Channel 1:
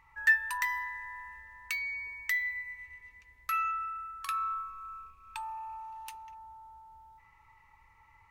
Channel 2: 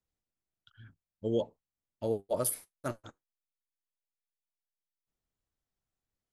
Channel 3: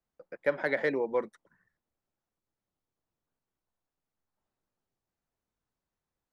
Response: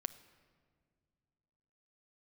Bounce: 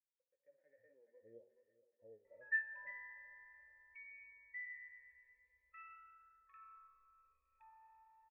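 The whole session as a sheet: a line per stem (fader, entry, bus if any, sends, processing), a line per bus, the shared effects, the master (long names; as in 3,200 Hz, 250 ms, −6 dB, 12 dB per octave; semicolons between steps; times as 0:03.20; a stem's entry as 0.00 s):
+1.0 dB, 2.25 s, no send, no echo send, no processing
−16.0 dB, 0.00 s, send −5.5 dB, echo send −15 dB, no processing
−19.0 dB, 0.00 s, send −7.5 dB, echo send −4.5 dB, downward compressor 4 to 1, threshold −35 dBFS, peak gain reduction 11.5 dB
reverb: on, pre-delay 7 ms
echo: repeating echo 427 ms, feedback 45%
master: harmonic and percussive parts rebalanced percussive −16 dB; flanger 0.47 Hz, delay 9.1 ms, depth 7 ms, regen +89%; formant resonators in series e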